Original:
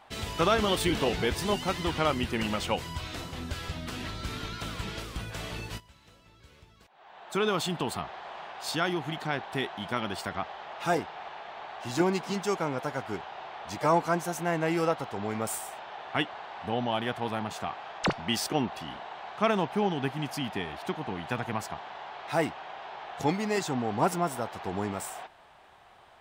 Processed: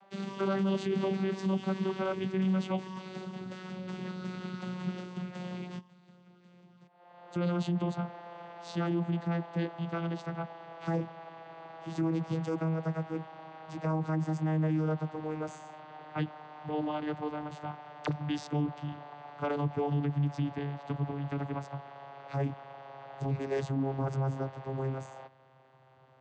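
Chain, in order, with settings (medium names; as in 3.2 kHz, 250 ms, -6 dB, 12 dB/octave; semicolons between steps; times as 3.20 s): vocoder on a note that slides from G3, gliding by -7 st; bass shelf 180 Hz +4.5 dB; peak limiter -23 dBFS, peak gain reduction 11.5 dB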